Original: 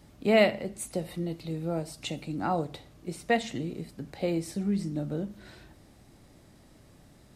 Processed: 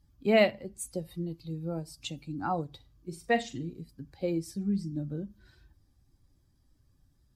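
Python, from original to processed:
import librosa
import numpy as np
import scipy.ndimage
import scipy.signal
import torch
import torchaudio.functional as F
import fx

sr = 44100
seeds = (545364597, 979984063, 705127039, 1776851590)

y = fx.bin_expand(x, sr, power=1.5)
y = fx.room_flutter(y, sr, wall_m=7.3, rt60_s=0.23, at=(2.76, 3.7))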